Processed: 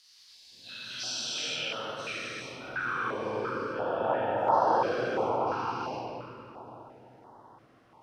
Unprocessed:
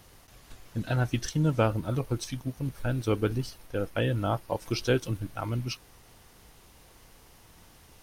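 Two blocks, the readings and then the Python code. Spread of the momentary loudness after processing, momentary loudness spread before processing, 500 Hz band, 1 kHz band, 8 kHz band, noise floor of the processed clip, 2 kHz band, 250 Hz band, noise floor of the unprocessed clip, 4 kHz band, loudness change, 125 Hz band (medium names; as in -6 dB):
19 LU, 8 LU, +0.5 dB, +9.0 dB, +0.5 dB, -59 dBFS, +3.5 dB, -8.0 dB, -56 dBFS, +4.5 dB, -0.5 dB, -18.0 dB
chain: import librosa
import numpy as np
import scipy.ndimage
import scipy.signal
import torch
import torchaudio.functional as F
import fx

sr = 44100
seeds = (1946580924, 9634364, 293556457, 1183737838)

y = fx.spec_dilate(x, sr, span_ms=480)
y = fx.filter_sweep_bandpass(y, sr, from_hz=4600.0, to_hz=900.0, start_s=0.99, end_s=3.38, q=4.0)
y = fx.room_shoebox(y, sr, seeds[0], volume_m3=210.0, walls='hard', distance_m=0.99)
y = fx.filter_held_notch(y, sr, hz=2.9, low_hz=610.0, high_hz=2400.0)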